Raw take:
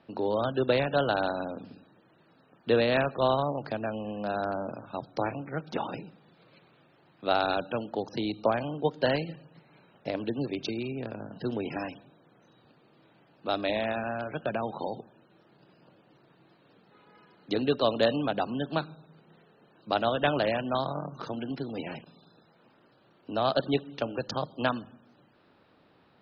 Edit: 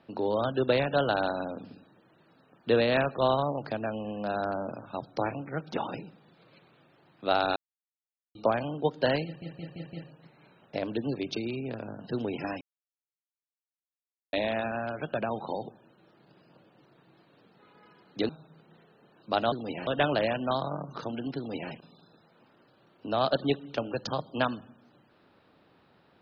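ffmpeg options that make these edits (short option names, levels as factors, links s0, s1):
-filter_complex "[0:a]asplit=12[s0][s1][s2][s3][s4][s5][s6][s7][s8][s9][s10][s11];[s0]atrim=end=7.56,asetpts=PTS-STARTPTS,afade=t=out:st=7.556:d=0.004:c=hsin[s12];[s1]atrim=start=7.56:end=8.35,asetpts=PTS-STARTPTS,volume=0[s13];[s2]atrim=start=8.35:end=9.422,asetpts=PTS-STARTPTS,afade=t=in:d=0.004:c=hsin[s14];[s3]atrim=start=9.248:end=9.422[s15];[s4]atrim=start=9.248:end=9.422[s16];[s5]atrim=start=9.248:end=9.422[s17];[s6]atrim=start=9.248:end=11.93,asetpts=PTS-STARTPTS,afade=t=out:st=2.678:d=0.004:c=hsin[s18];[s7]atrim=start=11.93:end=13.65,asetpts=PTS-STARTPTS,volume=0[s19];[s8]atrim=start=13.65:end=17.612,asetpts=PTS-STARTPTS,afade=t=in:d=0.004:c=hsin[s20];[s9]atrim=start=18.878:end=20.112[s21];[s10]atrim=start=21.608:end=21.962[s22];[s11]atrim=start=20.108[s23];[s12][s13][s14]concat=n=3:v=0:a=1[s24];[s24][s15]acrossfade=d=0.004:c1=hsin:c2=hsin[s25];[s25][s16]acrossfade=d=0.004:c1=hsin:c2=hsin[s26];[s26][s17]acrossfade=d=0.004:c1=hsin:c2=hsin[s27];[s18][s19][s20]concat=n=3:v=0:a=1[s28];[s27][s28]acrossfade=d=0.004:c1=hsin:c2=hsin[s29];[s29][s21]acrossfade=d=0.004:c1=hsin:c2=hsin[s30];[s30][s22]acrossfade=d=0.004:c1=hsin:c2=hsin[s31];[s31][s23]acrossfade=d=0.004:c1=hsin:c2=hsin"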